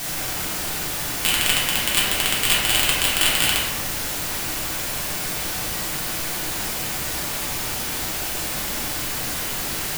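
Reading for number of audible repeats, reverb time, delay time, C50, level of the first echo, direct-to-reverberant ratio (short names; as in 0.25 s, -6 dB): none, 1.2 s, none, 0.5 dB, none, -7.0 dB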